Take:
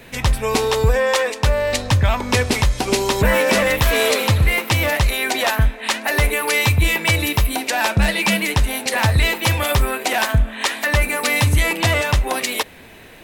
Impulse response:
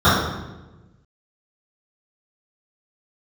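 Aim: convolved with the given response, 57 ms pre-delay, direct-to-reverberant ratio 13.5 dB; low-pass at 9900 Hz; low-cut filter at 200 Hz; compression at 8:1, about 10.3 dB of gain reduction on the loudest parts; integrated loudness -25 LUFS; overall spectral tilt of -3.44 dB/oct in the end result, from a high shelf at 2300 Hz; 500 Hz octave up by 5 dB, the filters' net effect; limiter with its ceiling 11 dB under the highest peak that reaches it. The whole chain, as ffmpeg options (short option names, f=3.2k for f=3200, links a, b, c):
-filter_complex "[0:a]highpass=200,lowpass=9.9k,equalizer=f=500:t=o:g=5.5,highshelf=f=2.3k:g=8,acompressor=threshold=-20dB:ratio=8,alimiter=limit=-16dB:level=0:latency=1,asplit=2[a][b];[1:a]atrim=start_sample=2205,adelay=57[c];[b][c]afir=irnorm=-1:irlink=0,volume=-40dB[d];[a][d]amix=inputs=2:normalize=0,volume=0.5dB"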